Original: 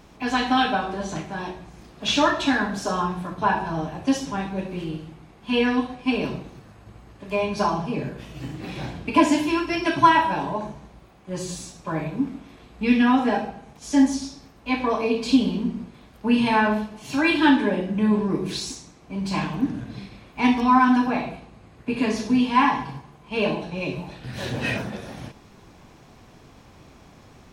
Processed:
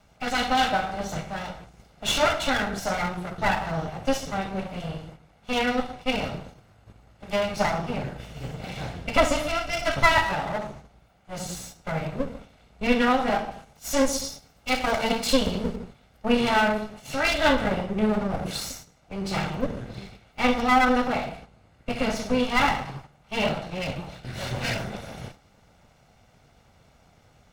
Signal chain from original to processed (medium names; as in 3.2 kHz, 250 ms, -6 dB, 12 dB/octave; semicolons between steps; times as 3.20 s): comb filter that takes the minimum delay 1.4 ms; gate -43 dBFS, range -7 dB; 13.51–15.76 s: treble shelf 3.4 kHz +8 dB